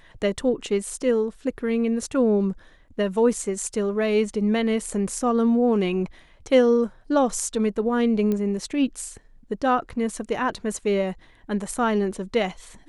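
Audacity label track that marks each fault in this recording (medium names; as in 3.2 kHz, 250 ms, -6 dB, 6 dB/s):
8.320000	8.320000	pop -15 dBFS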